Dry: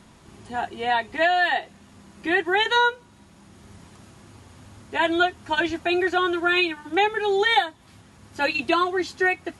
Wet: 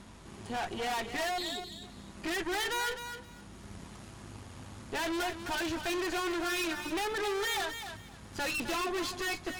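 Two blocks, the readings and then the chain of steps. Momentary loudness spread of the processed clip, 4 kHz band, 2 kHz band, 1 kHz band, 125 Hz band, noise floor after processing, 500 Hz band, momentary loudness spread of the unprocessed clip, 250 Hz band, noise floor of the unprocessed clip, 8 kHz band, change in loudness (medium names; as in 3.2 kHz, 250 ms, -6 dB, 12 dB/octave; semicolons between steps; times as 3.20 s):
16 LU, -8.5 dB, -12.0 dB, -12.5 dB, -2.0 dB, -51 dBFS, -11.5 dB, 8 LU, -9.0 dB, -52 dBFS, +5.5 dB, -11.0 dB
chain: spectral selection erased 1.37–1.82 s, 440–3200 Hz; valve stage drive 36 dB, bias 0.8; hum 50 Hz, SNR 22 dB; on a send: thinning echo 260 ms, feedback 20%, level -8.5 dB; on the sum: trim +4 dB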